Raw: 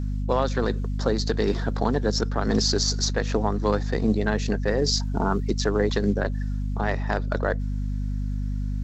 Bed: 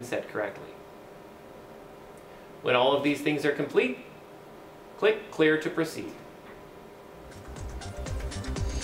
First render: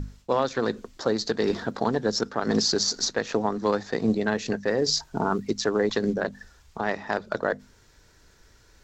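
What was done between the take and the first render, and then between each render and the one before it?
hum notches 50/100/150/200/250 Hz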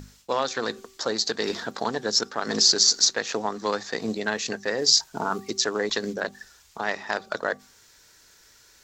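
tilt EQ +3 dB/octave; de-hum 385.3 Hz, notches 3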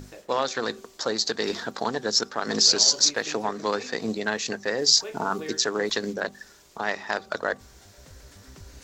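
add bed -15 dB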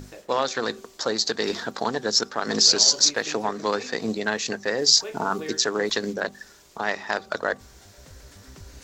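trim +1.5 dB

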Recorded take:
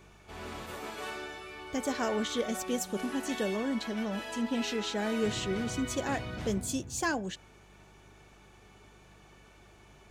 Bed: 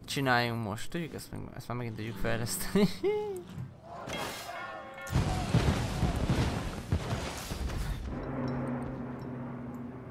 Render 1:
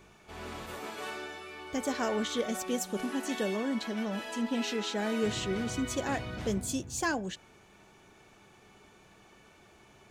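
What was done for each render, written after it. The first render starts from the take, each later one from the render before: de-hum 50 Hz, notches 3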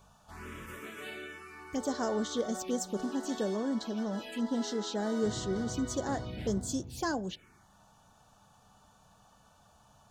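touch-sensitive phaser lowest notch 330 Hz, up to 2.5 kHz, full sweep at -30 dBFS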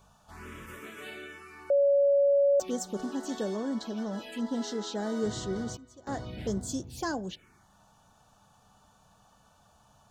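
1.70–2.60 s: bleep 563 Hz -19.5 dBFS; 5.46–6.38 s: dip -19.5 dB, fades 0.31 s logarithmic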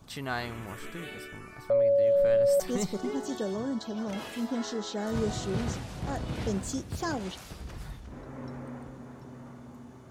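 add bed -6.5 dB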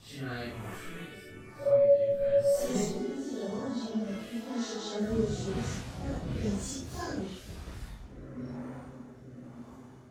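phase randomisation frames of 200 ms; rotary cabinet horn 1 Hz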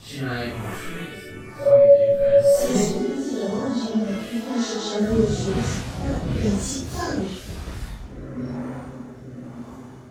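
trim +10 dB

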